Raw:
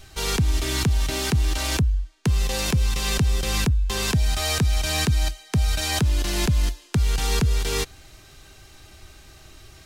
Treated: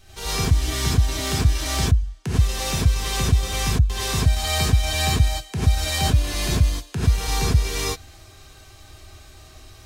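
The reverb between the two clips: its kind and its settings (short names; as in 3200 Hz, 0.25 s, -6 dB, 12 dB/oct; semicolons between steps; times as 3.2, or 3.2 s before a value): non-linear reverb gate 0.13 s rising, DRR -7.5 dB; gain -7 dB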